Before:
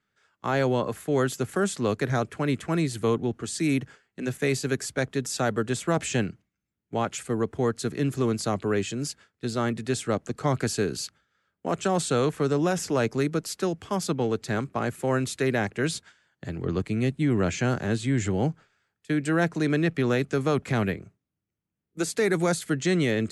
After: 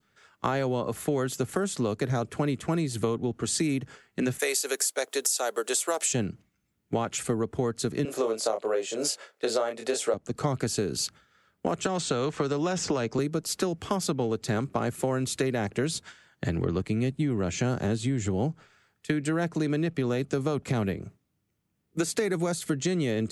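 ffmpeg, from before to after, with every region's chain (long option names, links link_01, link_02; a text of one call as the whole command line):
ffmpeg -i in.wav -filter_complex "[0:a]asettb=1/sr,asplit=3[link_01][link_02][link_03];[link_01]atrim=end=4.394[link_04];[link_02]atrim=start=4.39:end=6.13,asetpts=PTS-STARTPTS,afade=type=in:duration=0.004:curve=qsin,afade=type=out:start_time=1.736:duration=0.004:curve=qsin,highpass=frequency=430:width=0.5412,highpass=frequency=430:width=1.3066,aemphasis=mode=production:type=50fm[link_05];[link_03]atrim=start=6.126[link_06];[link_04][link_05]acrossfade=duration=0.004:curve1=hsin:curve2=qsin[link_07];[link_07][link_06]acrossfade=duration=0.004:curve1=qsin:curve2=hsin,asettb=1/sr,asplit=3[link_08][link_09][link_10];[link_08]atrim=end=8.054[link_11];[link_09]atrim=start=8.05:end=10.14,asetpts=PTS-STARTPTS,afade=type=in:duration=0.004:curve=qsin,afade=type=out:start_time=2.086:duration=0.004:curve=qsin,highpass=frequency=540:width_type=q:width=3.2,asplit=2[link_12][link_13];[link_13]adelay=27,volume=-5dB[link_14];[link_12][link_14]amix=inputs=2:normalize=0,atrim=end_sample=92169[link_15];[link_10]atrim=start=10.136[link_16];[link_11][link_15]acrossfade=duration=0.004:curve1=hsin:curve2=qsin[link_17];[link_17][link_16]acrossfade=duration=0.004:curve1=qsin:curve2=hsin,asettb=1/sr,asplit=3[link_18][link_19][link_20];[link_18]atrim=end=11.864[link_21];[link_19]atrim=start=11.86:end=13.19,asetpts=PTS-STARTPTS,afade=type=in:duration=0.004:curve=qsin,afade=type=out:start_time=1.326:duration=0.004:curve=qsin,lowpass=frequency=7600:width=0.5412,lowpass=frequency=7600:width=1.3066,equalizer=frequency=1100:width=0.43:gain=6.5,acrossover=split=380|1800[link_22][link_23][link_24];[link_22]acompressor=threshold=-30dB:ratio=4[link_25];[link_23]acompressor=threshold=-31dB:ratio=4[link_26];[link_24]acompressor=threshold=-34dB:ratio=4[link_27];[link_25][link_26][link_27]amix=inputs=3:normalize=0[link_28];[link_20]atrim=start=13.186[link_29];[link_21][link_28]acrossfade=duration=0.004:curve1=hsin:curve2=qsin[link_30];[link_30][link_29]acrossfade=duration=0.004:curve1=qsin:curve2=hsin,bandreject=frequency=1600:width=29,adynamicequalizer=threshold=0.00562:dfrequency=1900:dqfactor=1.1:tfrequency=1900:tqfactor=1.1:attack=5:release=100:ratio=0.375:range=3:mode=cutabove:tftype=bell,acompressor=threshold=-33dB:ratio=10,volume=9dB" out.wav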